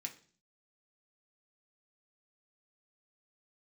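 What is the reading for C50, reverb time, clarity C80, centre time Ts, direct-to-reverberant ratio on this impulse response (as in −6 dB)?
13.5 dB, 0.45 s, 18.5 dB, 10 ms, 1.5 dB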